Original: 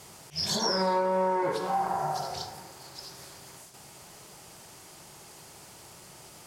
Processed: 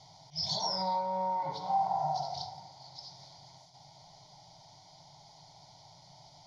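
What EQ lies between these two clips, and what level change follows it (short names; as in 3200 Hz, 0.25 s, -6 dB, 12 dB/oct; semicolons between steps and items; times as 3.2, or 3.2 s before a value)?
LPF 6200 Hz 24 dB/oct; fixed phaser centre 330 Hz, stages 8; fixed phaser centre 1800 Hz, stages 8; 0.0 dB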